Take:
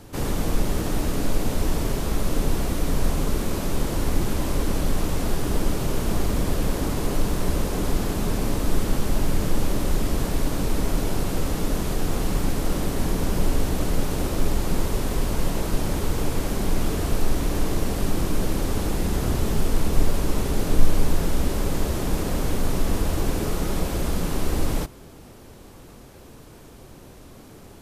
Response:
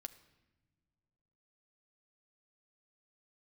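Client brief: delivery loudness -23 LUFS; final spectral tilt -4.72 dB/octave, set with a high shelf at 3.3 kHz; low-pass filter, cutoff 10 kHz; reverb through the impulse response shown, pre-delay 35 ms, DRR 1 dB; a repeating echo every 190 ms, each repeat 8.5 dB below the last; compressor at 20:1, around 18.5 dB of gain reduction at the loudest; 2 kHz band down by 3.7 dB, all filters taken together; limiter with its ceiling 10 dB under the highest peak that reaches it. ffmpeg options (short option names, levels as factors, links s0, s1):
-filter_complex "[0:a]lowpass=10000,equalizer=f=2000:t=o:g=-7.5,highshelf=f=3300:g=7.5,acompressor=threshold=0.0631:ratio=20,alimiter=level_in=1.26:limit=0.0631:level=0:latency=1,volume=0.794,aecho=1:1:190|380|570|760:0.376|0.143|0.0543|0.0206,asplit=2[s0][s1];[1:a]atrim=start_sample=2205,adelay=35[s2];[s1][s2]afir=irnorm=-1:irlink=0,volume=1.58[s3];[s0][s3]amix=inputs=2:normalize=0,volume=3.76"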